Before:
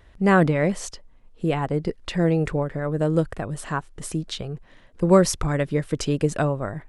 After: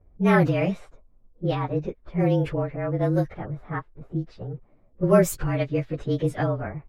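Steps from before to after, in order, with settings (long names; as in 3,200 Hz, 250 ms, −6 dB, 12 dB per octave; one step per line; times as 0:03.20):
partials spread apart or drawn together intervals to 109%
low-pass that shuts in the quiet parts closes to 510 Hz, open at −17.5 dBFS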